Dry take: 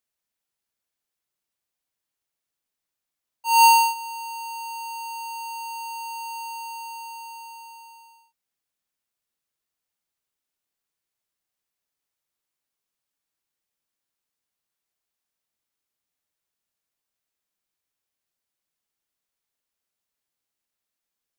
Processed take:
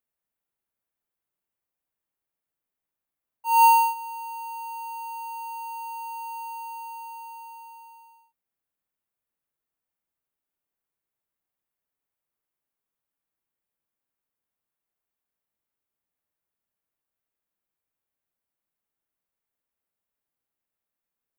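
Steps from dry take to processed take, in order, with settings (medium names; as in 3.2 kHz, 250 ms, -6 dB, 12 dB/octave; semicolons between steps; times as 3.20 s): peaking EQ 5.3 kHz -14 dB 1.8 oct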